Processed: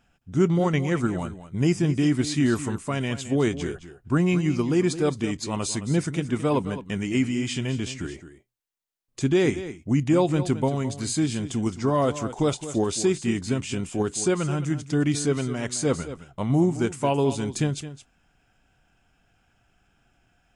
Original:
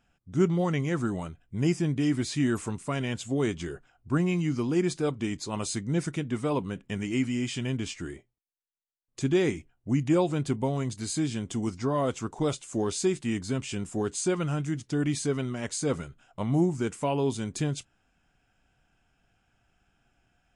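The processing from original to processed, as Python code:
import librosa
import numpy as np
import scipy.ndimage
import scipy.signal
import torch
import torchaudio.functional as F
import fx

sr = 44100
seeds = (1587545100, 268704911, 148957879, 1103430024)

p1 = fx.level_steps(x, sr, step_db=9)
p2 = x + F.gain(torch.from_numpy(p1), -1.0).numpy()
y = p2 + 10.0 ** (-13.0 / 20.0) * np.pad(p2, (int(216 * sr / 1000.0), 0))[:len(p2)]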